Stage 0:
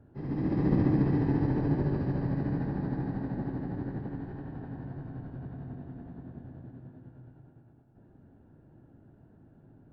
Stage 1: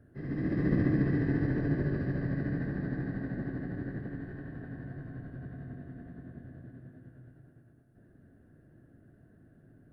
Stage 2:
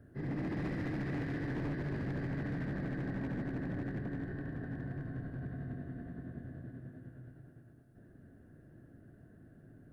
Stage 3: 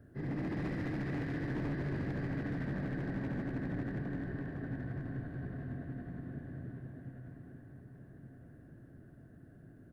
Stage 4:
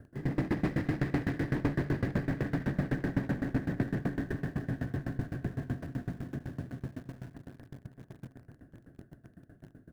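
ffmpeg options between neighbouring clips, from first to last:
ffmpeg -i in.wav -af "superequalizer=9b=0.316:11b=2.51:16b=3.16,volume=-2dB" out.wav
ffmpeg -i in.wav -filter_complex "[0:a]acrossover=split=1600[link_01][link_02];[link_01]alimiter=level_in=3dB:limit=-24dB:level=0:latency=1:release=428,volume=-3dB[link_03];[link_03][link_02]amix=inputs=2:normalize=0,volume=35dB,asoftclip=hard,volume=-35dB,volume=1.5dB" out.wav
ffmpeg -i in.wav -filter_complex "[0:a]asplit=2[link_01][link_02];[link_02]adelay=1176,lowpass=frequency=4500:poles=1,volume=-11dB,asplit=2[link_03][link_04];[link_04]adelay=1176,lowpass=frequency=4500:poles=1,volume=0.49,asplit=2[link_05][link_06];[link_06]adelay=1176,lowpass=frequency=4500:poles=1,volume=0.49,asplit=2[link_07][link_08];[link_08]adelay=1176,lowpass=frequency=4500:poles=1,volume=0.49,asplit=2[link_09][link_10];[link_10]adelay=1176,lowpass=frequency=4500:poles=1,volume=0.49[link_11];[link_01][link_03][link_05][link_07][link_09][link_11]amix=inputs=6:normalize=0" out.wav
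ffmpeg -i in.wav -filter_complex "[0:a]asplit=2[link_01][link_02];[link_02]aeval=exprs='val(0)*gte(abs(val(0)),0.00447)':channel_layout=same,volume=-4.5dB[link_03];[link_01][link_03]amix=inputs=2:normalize=0,aeval=exprs='val(0)*pow(10,-22*if(lt(mod(7.9*n/s,1),2*abs(7.9)/1000),1-mod(7.9*n/s,1)/(2*abs(7.9)/1000),(mod(7.9*n/s,1)-2*abs(7.9)/1000)/(1-2*abs(7.9)/1000))/20)':channel_layout=same,volume=8dB" out.wav

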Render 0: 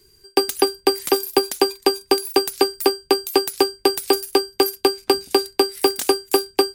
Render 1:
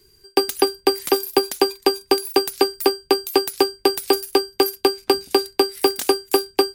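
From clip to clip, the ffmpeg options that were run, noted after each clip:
ffmpeg -i in.wav -af "equalizer=frequency=8000:width_type=o:width=0.77:gain=-2.5" out.wav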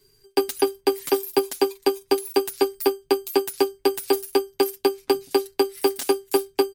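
ffmpeg -i in.wav -af "aecho=1:1:7.3:0.85,volume=-6dB" out.wav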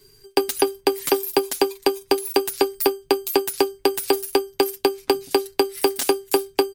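ffmpeg -i in.wav -af "acompressor=threshold=-22dB:ratio=6,volume=7dB" out.wav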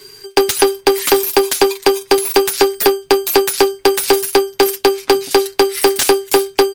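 ffmpeg -i in.wav -filter_complex "[0:a]asplit=2[link_01][link_02];[link_02]highpass=frequency=720:poles=1,volume=22dB,asoftclip=type=tanh:threshold=-3.5dB[link_03];[link_01][link_03]amix=inputs=2:normalize=0,lowpass=frequency=4800:poles=1,volume=-6dB,volume=3dB" out.wav

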